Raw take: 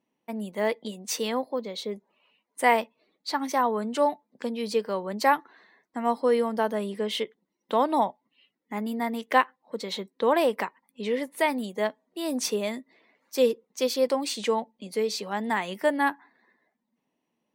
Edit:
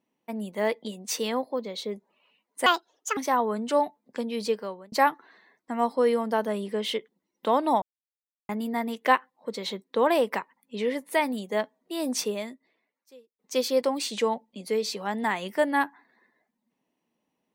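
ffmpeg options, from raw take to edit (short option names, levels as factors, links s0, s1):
-filter_complex "[0:a]asplit=7[s0][s1][s2][s3][s4][s5][s6];[s0]atrim=end=2.664[s7];[s1]atrim=start=2.66:end=3.43,asetpts=PTS-STARTPTS,asetrate=66591,aresample=44100,atrim=end_sample=22488,asetpts=PTS-STARTPTS[s8];[s2]atrim=start=3.426:end=5.18,asetpts=PTS-STARTPTS,afade=t=out:st=1.304:d=0.45[s9];[s3]atrim=start=5.18:end=8.08,asetpts=PTS-STARTPTS,afade=t=in:d=0.004:c=hsin,afade=t=out:st=2.896:d=0.004:c=hsin[s10];[s4]atrim=start=8.08:end=8.75,asetpts=PTS-STARTPTS,volume=0[s11];[s5]atrim=start=8.75:end=13.65,asetpts=PTS-STARTPTS,afade=t=in:d=0.004:c=hsin,afade=t=out:st=3.69:d=1.21:c=qua[s12];[s6]atrim=start=13.65,asetpts=PTS-STARTPTS,afade=t=in:d=0.004:c=hsin[s13];[s7][s8]acrossfade=d=0.004:c1=hsin:c2=hsin[s14];[s9][s10][s11][s12][s13]concat=n=5:v=0:a=1[s15];[s14][s15]acrossfade=d=0.004:c1=hsin:c2=hsin"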